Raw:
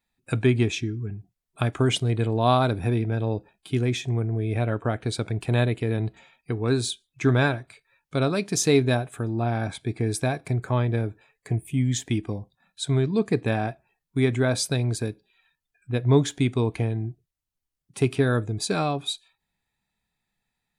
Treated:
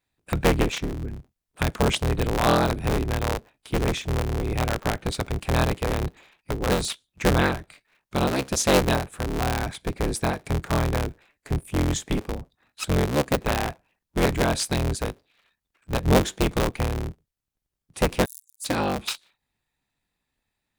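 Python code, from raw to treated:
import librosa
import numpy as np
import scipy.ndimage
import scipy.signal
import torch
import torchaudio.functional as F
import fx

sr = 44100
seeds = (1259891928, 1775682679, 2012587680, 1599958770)

y = fx.cycle_switch(x, sr, every=3, mode='inverted')
y = fx.cheby2_highpass(y, sr, hz=1400.0, order=4, stop_db=80, at=(18.24, 18.64), fade=0.02)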